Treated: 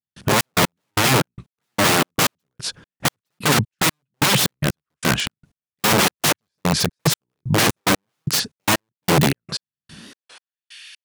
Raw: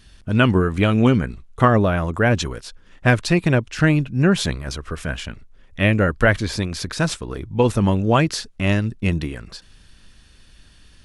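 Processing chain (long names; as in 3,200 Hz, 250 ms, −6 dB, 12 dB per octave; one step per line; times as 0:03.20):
in parallel at −1 dB: downward compressor 6 to 1, threshold −31 dBFS, peak gain reduction 19.5 dB
on the sum: wrap-around overflow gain 17.5 dB
high-pass filter sweep 140 Hz → 2,300 Hz, 0:09.92–0:10.64
gate pattern "..xxx..x.." 185 BPM −60 dB
wow of a warped record 45 rpm, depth 100 cents
level +6 dB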